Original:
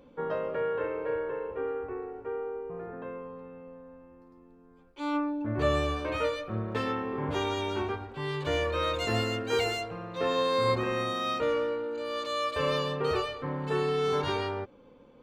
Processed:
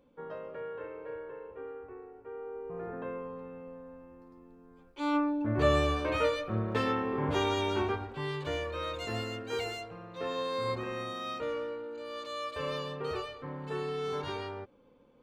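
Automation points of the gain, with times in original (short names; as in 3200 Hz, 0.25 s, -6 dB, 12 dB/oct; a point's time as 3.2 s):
2.24 s -10 dB
2.87 s +1 dB
8.05 s +1 dB
8.65 s -7 dB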